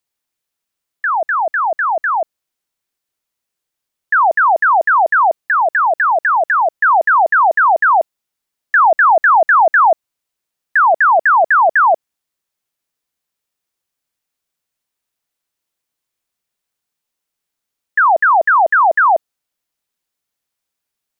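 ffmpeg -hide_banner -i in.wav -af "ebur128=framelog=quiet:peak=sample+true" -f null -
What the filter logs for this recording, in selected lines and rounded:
Integrated loudness:
  I:         -12.4 LUFS
  Threshold: -22.5 LUFS
Loudness range:
  LRA:         8.3 LU
  Threshold: -34.2 LUFS
  LRA low:   -20.0 LUFS
  LRA high:  -11.7 LUFS
Sample peak:
  Peak:       -6.0 dBFS
True peak:
  Peak:       -6.0 dBFS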